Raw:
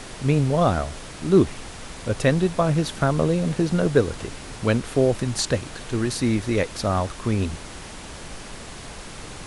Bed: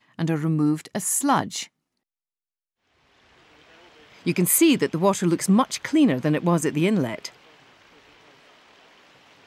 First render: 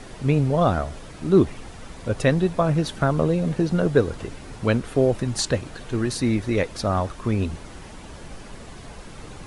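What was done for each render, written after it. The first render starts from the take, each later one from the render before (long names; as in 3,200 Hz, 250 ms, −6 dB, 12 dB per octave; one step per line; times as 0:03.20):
broadband denoise 8 dB, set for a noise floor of −39 dBFS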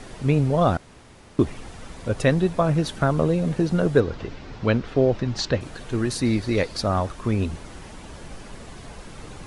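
0:00.77–0:01.39: fill with room tone
0:04.00–0:05.61: low-pass filter 5,500 Hz 24 dB per octave
0:06.25–0:06.80: parametric band 4,500 Hz +11.5 dB 0.29 octaves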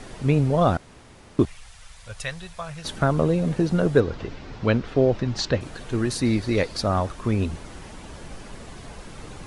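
0:01.45–0:02.85: guitar amp tone stack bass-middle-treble 10-0-10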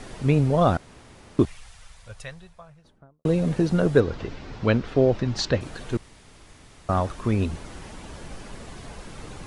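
0:01.44–0:03.25: fade out and dull
0:05.97–0:06.89: fill with room tone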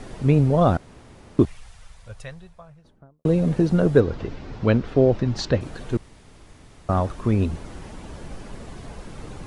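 tilt shelving filter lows +3 dB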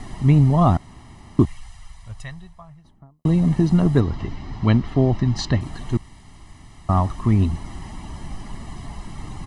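comb filter 1 ms, depth 78%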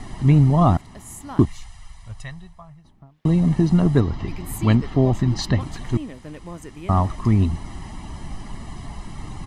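mix in bed −16 dB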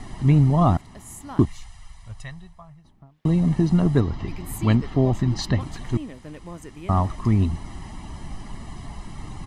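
level −2 dB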